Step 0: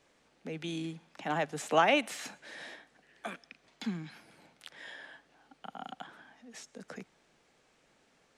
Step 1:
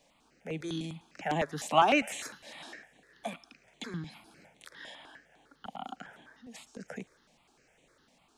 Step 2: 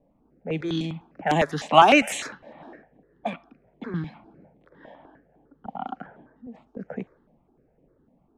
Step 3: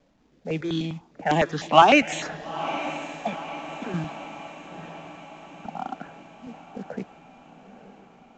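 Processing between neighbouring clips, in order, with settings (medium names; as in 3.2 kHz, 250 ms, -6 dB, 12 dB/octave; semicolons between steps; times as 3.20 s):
thinning echo 110 ms, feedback 70%, high-pass 940 Hz, level -22 dB; stepped phaser 9.9 Hz 370–5000 Hz; trim +4.5 dB
level-controlled noise filter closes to 400 Hz, open at -28.5 dBFS; trim +9 dB
companded quantiser 6-bit; resampled via 16 kHz; echo that smears into a reverb 920 ms, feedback 58%, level -13 dB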